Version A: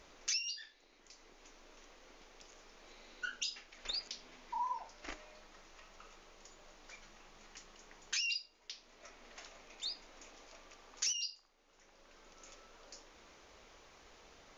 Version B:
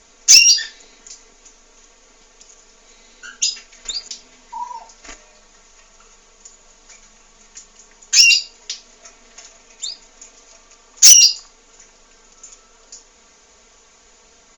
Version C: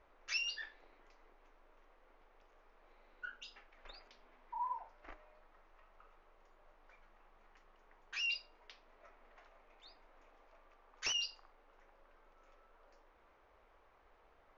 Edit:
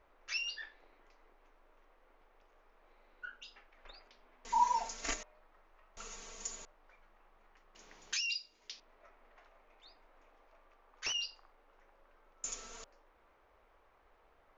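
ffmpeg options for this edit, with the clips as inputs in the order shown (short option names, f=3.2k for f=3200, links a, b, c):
-filter_complex "[1:a]asplit=3[a][b][c];[2:a]asplit=5[d][e][f][g][h];[d]atrim=end=4.452[i];[a]atrim=start=4.448:end=5.232[j];[e]atrim=start=5.228:end=5.972[k];[b]atrim=start=5.968:end=6.652[l];[f]atrim=start=6.648:end=7.752[m];[0:a]atrim=start=7.748:end=8.802[n];[g]atrim=start=8.798:end=12.442[o];[c]atrim=start=12.438:end=12.842[p];[h]atrim=start=12.838[q];[i][j]acrossfade=d=0.004:c1=hsin:c2=hsin[r];[r][k]acrossfade=d=0.004:c1=hsin:c2=hsin[s];[s][l]acrossfade=d=0.004:c1=hsin:c2=hsin[t];[t][m]acrossfade=d=0.004:c1=hsin:c2=hsin[u];[u][n]acrossfade=d=0.004:c1=hsin:c2=hsin[v];[v][o]acrossfade=d=0.004:c1=hsin:c2=hsin[w];[w][p]acrossfade=d=0.004:c1=hsin:c2=hsin[x];[x][q]acrossfade=d=0.004:c1=hsin:c2=hsin"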